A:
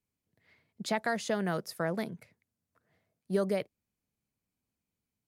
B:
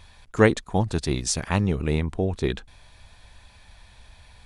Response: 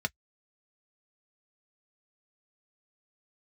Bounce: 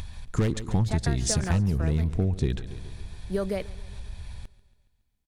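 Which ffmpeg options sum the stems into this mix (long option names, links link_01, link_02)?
-filter_complex "[0:a]volume=1dB,asplit=2[link_01][link_02];[link_02]volume=-21.5dB[link_03];[1:a]asoftclip=type=hard:threshold=-16.5dB,bass=frequency=250:gain=13,treble=frequency=4000:gain=4,acompressor=mode=upward:threshold=-31dB:ratio=2.5,volume=-1.5dB,asplit=2[link_04][link_05];[link_05]volume=-19dB[link_06];[link_03][link_06]amix=inputs=2:normalize=0,aecho=0:1:139|278|417|556|695|834|973|1112|1251:1|0.59|0.348|0.205|0.121|0.0715|0.0422|0.0249|0.0147[link_07];[link_01][link_04][link_07]amix=inputs=3:normalize=0,acompressor=threshold=-20dB:ratio=10"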